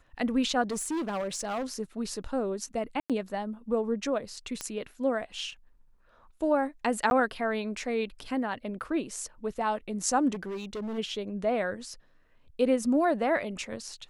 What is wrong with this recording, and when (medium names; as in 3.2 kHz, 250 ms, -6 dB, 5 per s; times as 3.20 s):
0.70–1.74 s: clipped -28 dBFS
3.00–3.10 s: dropout 97 ms
4.61 s: pop -17 dBFS
7.10–7.11 s: dropout 11 ms
10.33–10.99 s: clipped -32 dBFS